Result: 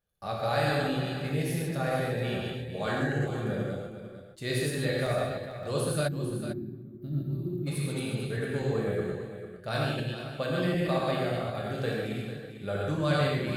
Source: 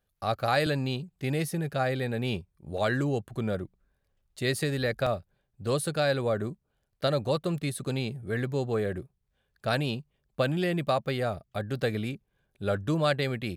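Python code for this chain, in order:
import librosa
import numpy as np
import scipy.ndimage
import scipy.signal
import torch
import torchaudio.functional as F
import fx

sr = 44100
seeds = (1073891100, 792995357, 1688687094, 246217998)

p1 = fx.reverse_delay(x, sr, ms=125, wet_db=-1.5)
p2 = fx.comb_fb(p1, sr, f0_hz=120.0, decay_s=0.82, harmonics='odd', damping=0.0, mix_pct=60)
p3 = fx.rev_gated(p2, sr, seeds[0], gate_ms=170, shape='flat', drr_db=-2.0)
p4 = fx.spec_box(p3, sr, start_s=6.08, length_s=1.59, low_hz=400.0, high_hz=12000.0, gain_db=-28)
y = p4 + fx.echo_single(p4, sr, ms=449, db=-11.0, dry=0)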